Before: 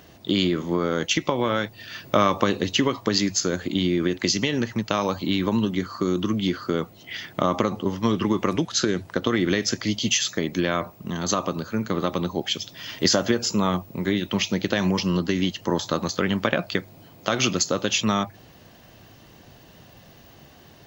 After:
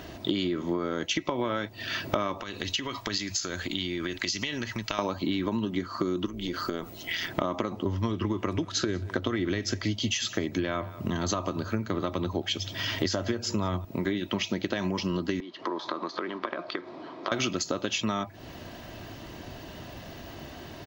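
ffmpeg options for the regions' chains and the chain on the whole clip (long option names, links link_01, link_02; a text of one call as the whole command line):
ffmpeg -i in.wav -filter_complex "[0:a]asettb=1/sr,asplit=3[link_01][link_02][link_03];[link_01]atrim=end=2.424[link_04];[link_02]atrim=start=2.42:end=4.99,asetpts=PTS-STARTPTS,afade=type=in:duration=0.004:curve=qsin,afade=type=out:start_time=2.566:duration=0.004:curve=qsin,acompressor=threshold=-25dB:ratio=3:attack=3.2:release=140:knee=1:detection=peak,equalizer=frequency=320:width=0.31:gain=-12.5[link_05];[link_03]atrim=start=4.986[link_06];[link_04][link_05]acrossfade=duration=0.004:curve1=hsin:curve2=qsin[link_07];[link_07][link_06]acrossfade=duration=0.004:curve1=qsin:curve2=hsin,asettb=1/sr,asplit=3[link_08][link_09][link_10];[link_08]atrim=end=6.264[link_11];[link_09]atrim=start=6.26:end=7.28,asetpts=PTS-STARTPTS,afade=type=in:duration=0.004:curve=qsin,afade=type=out:start_time=1.016:duration=0.004:curve=qsin,highshelf=frequency=5600:gain=11.5,acompressor=threshold=-29dB:ratio=10:attack=3.2:release=140:knee=1:detection=peak,tremolo=f=170:d=0.621[link_12];[link_10]atrim=start=7.276[link_13];[link_11][link_12]acrossfade=duration=0.004:curve1=hsin:curve2=qsin[link_14];[link_14][link_13]acrossfade=duration=0.004:curve1=qsin:curve2=hsin,asettb=1/sr,asplit=3[link_15][link_16][link_17];[link_15]atrim=end=7.854[link_18];[link_16]atrim=start=7.85:end=13.85,asetpts=PTS-STARTPTS,afade=type=in:duration=0.004:curve=qsin,afade=type=out:start_time=5.996:duration=0.004:curve=qsin,equalizer=frequency=97:width_type=o:width=0.31:gain=13.5,aecho=1:1:185:0.0668,atrim=end_sample=264600[link_19];[link_17]atrim=start=13.846[link_20];[link_18][link_19]acrossfade=duration=0.004:curve1=hsin:curve2=qsin[link_21];[link_21][link_20]acrossfade=duration=0.004:curve1=qsin:curve2=hsin,asettb=1/sr,asplit=3[link_22][link_23][link_24];[link_22]atrim=end=15.404[link_25];[link_23]atrim=start=15.4:end=17.32,asetpts=PTS-STARTPTS,afade=type=in:duration=0.004:curve=qsin,afade=type=out:start_time=1.916:duration=0.004:curve=qsin,acompressor=threshold=-35dB:ratio=10:attack=3.2:release=140:knee=1:detection=peak,acrusher=bits=8:mix=0:aa=0.5,highpass=frequency=190:width=0.5412,highpass=frequency=190:width=1.3066,equalizer=frequency=200:width_type=q:width=4:gain=-9,equalizer=frequency=360:width_type=q:width=4:gain=5,equalizer=frequency=1100:width_type=q:width=4:gain=10,equalizer=frequency=2800:width_type=q:width=4:gain=-7,lowpass=frequency=4300:width=0.5412,lowpass=frequency=4300:width=1.3066[link_26];[link_24]atrim=start=17.316[link_27];[link_25][link_26]acrossfade=duration=0.004:curve1=hsin:curve2=qsin[link_28];[link_28][link_27]acrossfade=duration=0.004:curve1=qsin:curve2=hsin,highshelf=frequency=6400:gain=-9,aecho=1:1:3.1:0.32,acompressor=threshold=-34dB:ratio=6,volume=7.5dB" out.wav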